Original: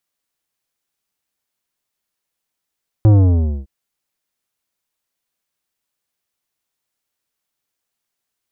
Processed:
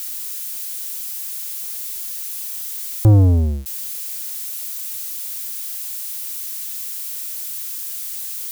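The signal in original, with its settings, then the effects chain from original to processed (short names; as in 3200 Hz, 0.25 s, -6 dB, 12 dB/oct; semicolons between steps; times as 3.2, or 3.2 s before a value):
sub drop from 110 Hz, over 0.61 s, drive 12 dB, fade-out 0.57 s, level -7.5 dB
switching spikes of -25 dBFS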